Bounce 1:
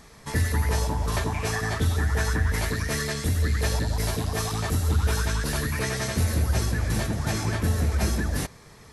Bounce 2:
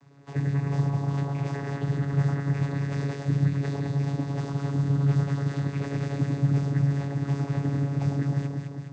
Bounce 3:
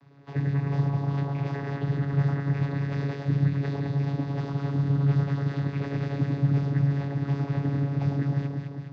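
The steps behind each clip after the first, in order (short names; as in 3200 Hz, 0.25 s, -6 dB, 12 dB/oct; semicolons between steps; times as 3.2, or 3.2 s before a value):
whisperiser; on a send: echo with dull and thin repeats by turns 0.104 s, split 1300 Hz, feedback 77%, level -2.5 dB; on the sum: vocoder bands 16, saw 140 Hz
LPF 4800 Hz 24 dB/oct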